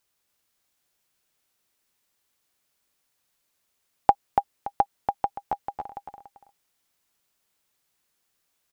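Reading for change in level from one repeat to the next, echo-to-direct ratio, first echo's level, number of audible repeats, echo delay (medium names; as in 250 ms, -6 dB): -11.5 dB, -4.0 dB, -4.5 dB, 2, 286 ms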